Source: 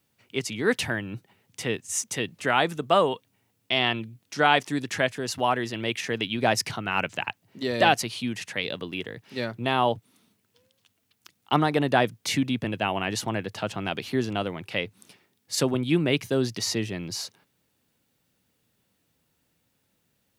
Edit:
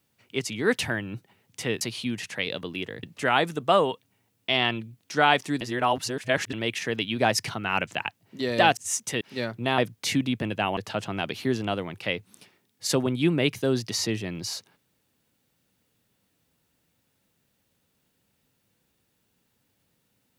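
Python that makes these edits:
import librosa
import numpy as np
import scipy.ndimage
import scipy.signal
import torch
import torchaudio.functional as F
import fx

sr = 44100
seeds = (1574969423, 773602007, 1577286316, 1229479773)

y = fx.edit(x, sr, fx.swap(start_s=1.81, length_s=0.44, other_s=7.99, other_length_s=1.22),
    fx.reverse_span(start_s=4.83, length_s=0.92),
    fx.cut(start_s=9.78, length_s=2.22),
    fx.cut(start_s=12.99, length_s=0.46), tone=tone)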